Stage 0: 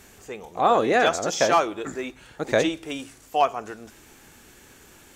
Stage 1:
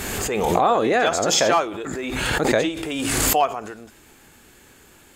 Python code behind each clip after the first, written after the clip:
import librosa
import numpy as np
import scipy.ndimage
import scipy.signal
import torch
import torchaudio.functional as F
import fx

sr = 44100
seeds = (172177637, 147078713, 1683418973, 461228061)

y = fx.notch(x, sr, hz=5800.0, q=8.6)
y = fx.pre_swell(y, sr, db_per_s=22.0)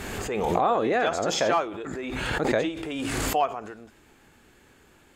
y = fx.high_shelf(x, sr, hz=5300.0, db=-11.0)
y = y * 10.0 ** (-4.5 / 20.0)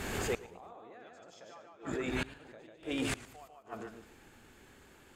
y = fx.echo_feedback(x, sr, ms=148, feedback_pct=17, wet_db=-3.5)
y = fx.gate_flip(y, sr, shuts_db=-18.0, range_db=-27)
y = fx.echo_warbled(y, sr, ms=109, feedback_pct=33, rate_hz=2.8, cents=133, wet_db=-18)
y = y * 10.0 ** (-3.5 / 20.0)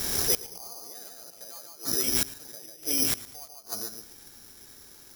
y = (np.kron(scipy.signal.resample_poly(x, 1, 8), np.eye(8)[0]) * 8)[:len(x)]